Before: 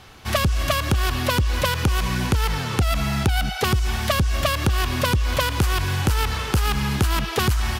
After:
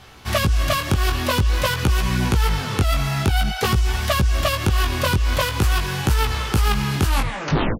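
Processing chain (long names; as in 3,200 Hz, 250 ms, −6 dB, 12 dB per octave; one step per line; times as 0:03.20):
turntable brake at the end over 0.73 s
chorus effect 0.49 Hz, delay 15.5 ms, depth 6.3 ms
level +4 dB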